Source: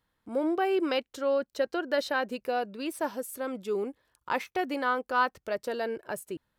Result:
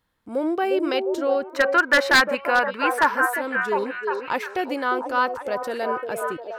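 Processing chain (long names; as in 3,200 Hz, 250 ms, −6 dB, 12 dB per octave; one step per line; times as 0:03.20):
0:01.52–0:03.26: flat-topped bell 1,500 Hz +15.5 dB
echo through a band-pass that steps 353 ms, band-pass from 450 Hz, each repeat 0.7 octaves, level −2.5 dB
wave folding −12.5 dBFS
level +4 dB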